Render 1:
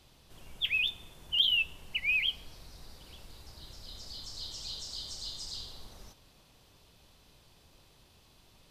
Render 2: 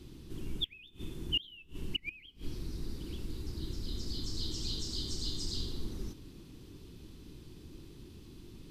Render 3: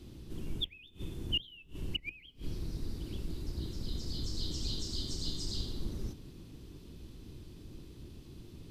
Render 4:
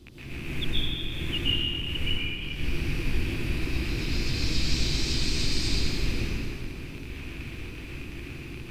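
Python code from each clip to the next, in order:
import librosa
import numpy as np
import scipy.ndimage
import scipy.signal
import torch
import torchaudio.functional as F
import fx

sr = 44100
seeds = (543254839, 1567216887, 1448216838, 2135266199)

y1 = fx.gate_flip(x, sr, shuts_db=-23.0, range_db=-26)
y1 = fx.low_shelf_res(y1, sr, hz=460.0, db=11.0, q=3.0)
y1 = F.gain(torch.from_numpy(y1), 1.0).numpy()
y2 = fx.octave_divider(y1, sr, octaves=1, level_db=0.0)
y2 = F.gain(torch.from_numpy(y2), -1.0).numpy()
y3 = fx.rattle_buzz(y2, sr, strikes_db=-44.0, level_db=-32.0)
y3 = fx.rev_plate(y3, sr, seeds[0], rt60_s=2.7, hf_ratio=0.75, predelay_ms=105, drr_db=-10.0)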